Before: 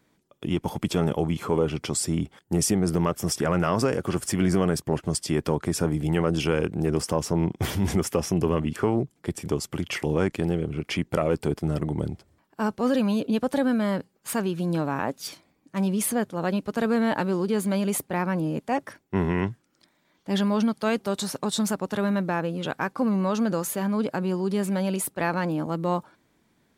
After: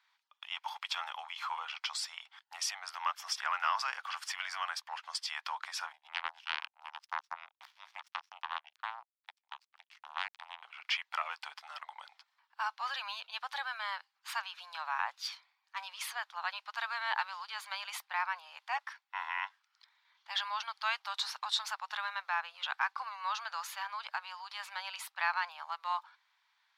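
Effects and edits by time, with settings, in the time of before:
5.92–10.63 power-law curve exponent 3
whole clip: steep high-pass 860 Hz 48 dB/oct; resonant high shelf 6200 Hz -13 dB, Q 1.5; gain -2.5 dB

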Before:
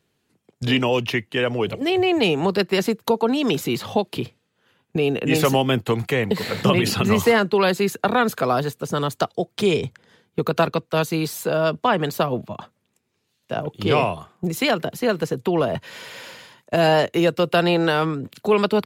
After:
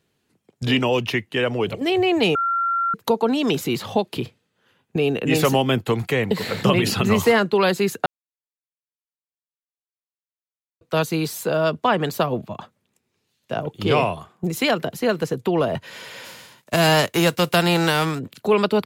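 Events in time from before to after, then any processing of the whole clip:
2.35–2.94 bleep 1370 Hz -18.5 dBFS
8.06–10.81 mute
16.24–18.18 spectral whitening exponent 0.6

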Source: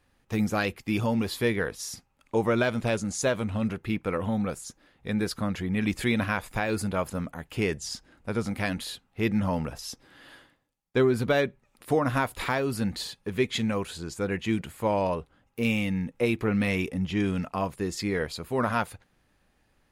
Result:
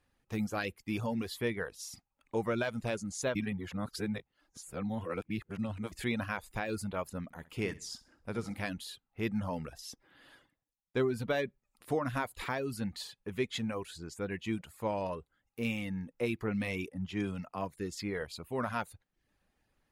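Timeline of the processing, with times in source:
3.35–5.92 reverse
7.24–8.65 flutter echo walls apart 11 m, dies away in 0.45 s
16.89–17.77 three-band expander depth 40%
whole clip: reverb removal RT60 0.5 s; gain -7.5 dB

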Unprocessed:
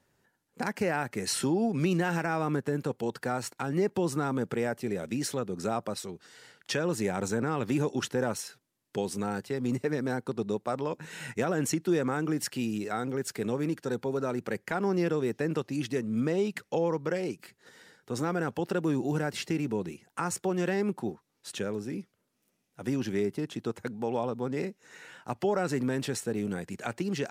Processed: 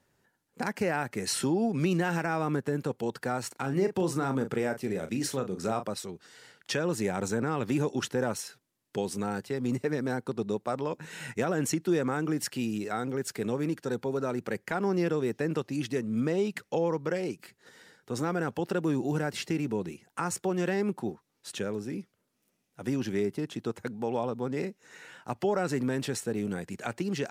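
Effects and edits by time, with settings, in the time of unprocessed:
3.47–5.86 doubler 37 ms -9 dB

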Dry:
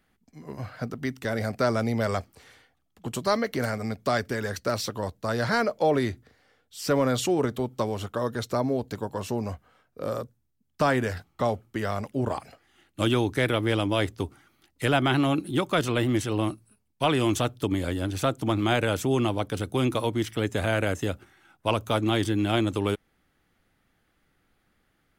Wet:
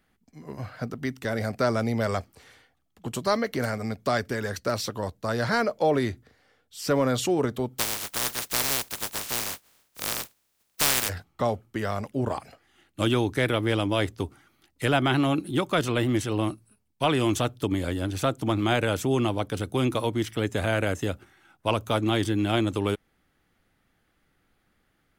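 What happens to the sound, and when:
7.78–11.08 spectral contrast lowered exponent 0.12

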